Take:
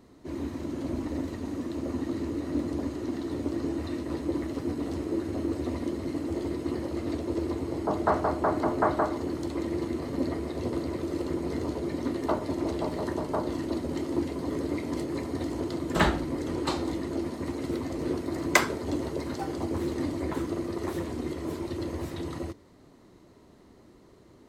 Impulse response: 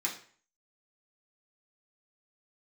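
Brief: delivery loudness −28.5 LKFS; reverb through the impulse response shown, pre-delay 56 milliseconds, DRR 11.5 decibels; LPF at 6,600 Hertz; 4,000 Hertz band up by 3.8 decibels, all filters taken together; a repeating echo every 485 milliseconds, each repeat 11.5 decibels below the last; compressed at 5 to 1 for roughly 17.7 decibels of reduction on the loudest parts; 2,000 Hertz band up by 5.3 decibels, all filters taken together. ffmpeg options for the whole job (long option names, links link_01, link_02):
-filter_complex "[0:a]lowpass=6600,equalizer=frequency=2000:width_type=o:gain=5.5,equalizer=frequency=4000:width_type=o:gain=3.5,acompressor=threshold=-34dB:ratio=5,aecho=1:1:485|970|1455:0.266|0.0718|0.0194,asplit=2[link_01][link_02];[1:a]atrim=start_sample=2205,adelay=56[link_03];[link_02][link_03]afir=irnorm=-1:irlink=0,volume=-16dB[link_04];[link_01][link_04]amix=inputs=2:normalize=0,volume=8.5dB"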